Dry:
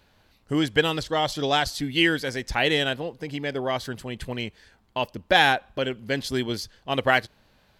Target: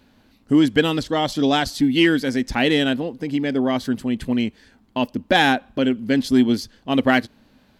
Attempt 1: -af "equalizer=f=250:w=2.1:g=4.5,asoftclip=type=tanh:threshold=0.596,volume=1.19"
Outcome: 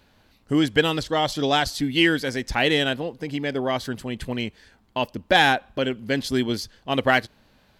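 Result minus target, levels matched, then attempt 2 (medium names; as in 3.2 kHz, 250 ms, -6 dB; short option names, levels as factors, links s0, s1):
250 Hz band -4.0 dB
-af "equalizer=f=250:w=2.1:g=15,asoftclip=type=tanh:threshold=0.596,volume=1.19"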